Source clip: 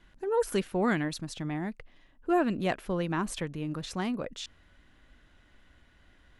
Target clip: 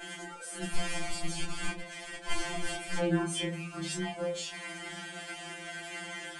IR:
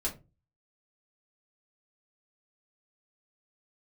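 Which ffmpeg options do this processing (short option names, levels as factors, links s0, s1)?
-filter_complex "[0:a]aeval=exprs='val(0)+0.5*0.0168*sgn(val(0))':c=same,highpass=210,bandreject=f=50:t=h:w=6,bandreject=f=100:t=h:w=6,bandreject=f=150:t=h:w=6,bandreject=f=200:t=h:w=6,bandreject=f=250:t=h:w=6,bandreject=f=300:t=h:w=6,bandreject=f=350:t=h:w=6,bandreject=f=400:t=h:w=6,adynamicequalizer=threshold=0.00141:dfrequency=4600:dqfactor=4.5:tfrequency=4600:tqfactor=4.5:attack=5:release=100:ratio=0.375:range=2:mode=cutabove:tftype=bell,acompressor=threshold=0.0126:ratio=2,flanger=delay=22.5:depth=7.9:speed=0.45,asettb=1/sr,asplit=3[s0][s1][s2];[s0]atrim=end=0.624[s3];[s1]atrim=start=0.62:end=2.99,asetpts=PTS-STARTPTS,afade=t=in:d=0.004:c=qsin,afade=t=out:st=2.366:d=0.004:c=qsin,aeval=exprs='(mod(79.4*val(0)+1,2)-1)/79.4':c=same[s4];[s2]atrim=start=2.986[s5];[s3][s4]acrossfade=d=0.004:c1=hsin:c2=qsin[s6];[s6][s5]acrossfade=d=0.004:c1=qsin:c2=hsin[s7];[1:a]atrim=start_sample=2205,afade=t=out:st=0.38:d=0.01,atrim=end_sample=17199[s8];[s7][s8]afir=irnorm=-1:irlink=0,aresample=22050,aresample=44100,afftfilt=real='re*2.83*eq(mod(b,8),0)':imag='im*2.83*eq(mod(b,8),0)':win_size=2048:overlap=0.75,volume=2"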